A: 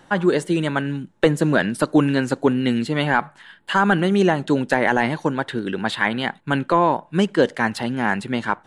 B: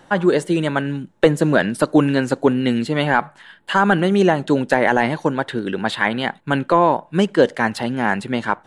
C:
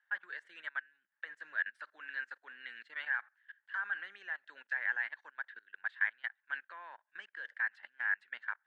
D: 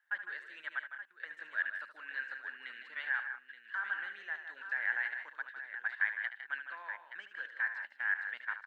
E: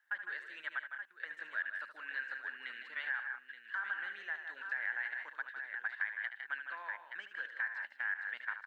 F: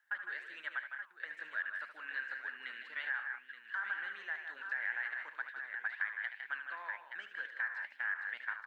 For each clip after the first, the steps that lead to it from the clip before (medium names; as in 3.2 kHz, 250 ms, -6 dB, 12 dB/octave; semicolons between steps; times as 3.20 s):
peaking EQ 580 Hz +3 dB 1 oct; trim +1 dB
level held to a coarse grid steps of 21 dB; ladder band-pass 1.8 kHz, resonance 75%; trim -6 dB
multi-tap echo 74/156/186/874 ms -10.5/-9.5/-13.5/-10.5 dB
compression 2.5:1, threshold -37 dBFS, peak gain reduction 8 dB; trim +1.5 dB
flange 2 Hz, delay 5.3 ms, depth 9.3 ms, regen +83%; trim +4.5 dB